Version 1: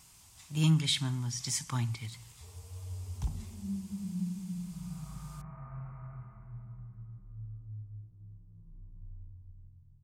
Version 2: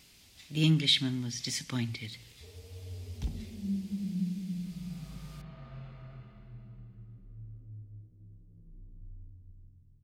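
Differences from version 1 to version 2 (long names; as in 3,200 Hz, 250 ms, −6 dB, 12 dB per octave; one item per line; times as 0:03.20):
background: remove Chebyshev low-pass filter 2,300 Hz, order 5
master: add graphic EQ with 10 bands 125 Hz −5 dB, 250 Hz +7 dB, 500 Hz +8 dB, 1,000 Hz −12 dB, 2,000 Hz +6 dB, 4,000 Hz +7 dB, 8,000 Hz −8 dB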